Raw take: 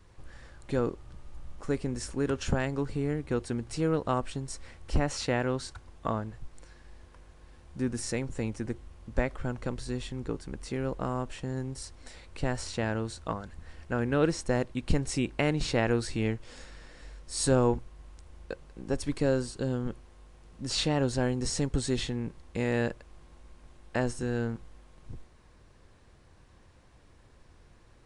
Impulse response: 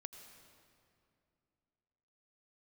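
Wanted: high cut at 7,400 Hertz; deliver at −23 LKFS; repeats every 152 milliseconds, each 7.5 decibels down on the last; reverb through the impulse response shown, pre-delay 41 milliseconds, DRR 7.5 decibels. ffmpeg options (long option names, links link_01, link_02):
-filter_complex "[0:a]lowpass=7400,aecho=1:1:152|304|456|608|760:0.422|0.177|0.0744|0.0312|0.0131,asplit=2[link_01][link_02];[1:a]atrim=start_sample=2205,adelay=41[link_03];[link_02][link_03]afir=irnorm=-1:irlink=0,volume=-2.5dB[link_04];[link_01][link_04]amix=inputs=2:normalize=0,volume=7.5dB"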